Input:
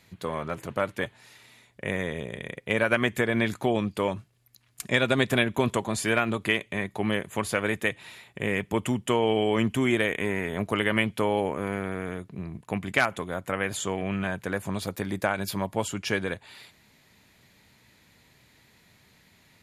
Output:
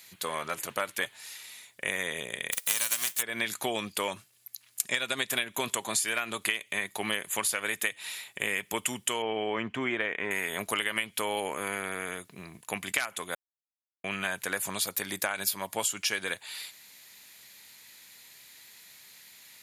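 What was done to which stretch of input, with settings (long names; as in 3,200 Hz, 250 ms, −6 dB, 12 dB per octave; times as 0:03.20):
0:02.51–0:03.21: spectral envelope flattened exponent 0.3
0:09.22–0:10.31: low-pass filter 1,800 Hz
0:13.35–0:14.04: silence
whole clip: spectral tilt +4.5 dB per octave; downward compressor 12 to 1, threshold −25 dBFS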